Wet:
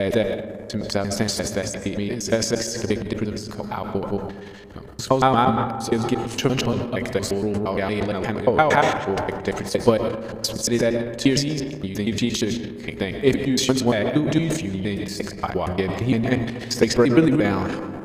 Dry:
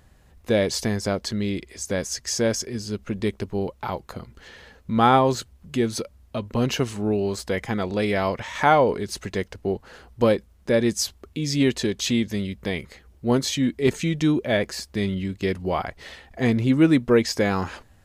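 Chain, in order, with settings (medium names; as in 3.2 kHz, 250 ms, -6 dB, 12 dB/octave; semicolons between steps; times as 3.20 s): slices played last to first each 116 ms, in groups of 6; algorithmic reverb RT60 2.6 s, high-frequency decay 0.3×, pre-delay 75 ms, DRR 10 dB; transient shaper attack +8 dB, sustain +12 dB; trim -3 dB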